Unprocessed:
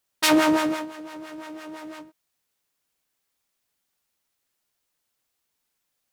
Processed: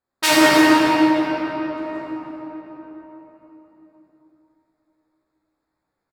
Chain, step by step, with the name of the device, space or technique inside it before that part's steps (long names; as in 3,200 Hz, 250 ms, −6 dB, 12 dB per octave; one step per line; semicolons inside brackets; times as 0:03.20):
adaptive Wiener filter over 15 samples
0:00.67–0:01.69: elliptic band-pass filter 2,100–4,900 Hz
cave (single-tap delay 304 ms −13.5 dB; convolution reverb RT60 4.3 s, pre-delay 28 ms, DRR −7 dB)
double-tracking delay 15 ms −3.5 dB